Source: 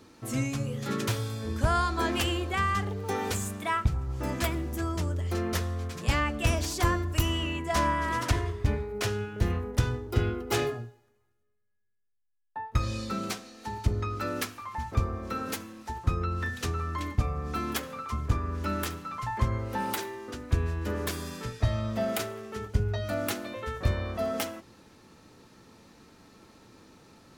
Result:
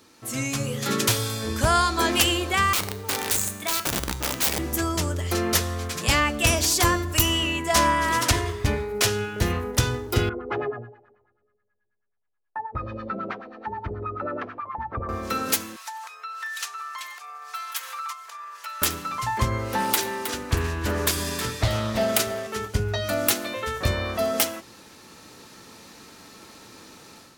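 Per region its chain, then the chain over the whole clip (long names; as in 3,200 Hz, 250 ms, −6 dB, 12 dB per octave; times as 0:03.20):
0:02.73–0:04.59: low-shelf EQ 86 Hz +8 dB + wrap-around overflow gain 22.5 dB + tuned comb filter 61 Hz, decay 0.59 s, harmonics odd
0:10.29–0:15.09: low-pass filter 4,400 Hz + auto-filter low-pass sine 9.3 Hz 460–1,700 Hz + downward compressor 1.5 to 1, threshold −47 dBFS
0:15.76–0:18.82: comb filter 4.4 ms, depth 55% + downward compressor 5 to 1, threshold −38 dBFS + high-pass filter 820 Hz 24 dB per octave
0:19.71–0:22.47: repeating echo 317 ms, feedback 29%, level −10.5 dB + highs frequency-modulated by the lows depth 0.43 ms
whole clip: spectral tilt +2 dB per octave; automatic gain control gain up to 9 dB; dynamic equaliser 1,500 Hz, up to −3 dB, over −29 dBFS, Q 0.77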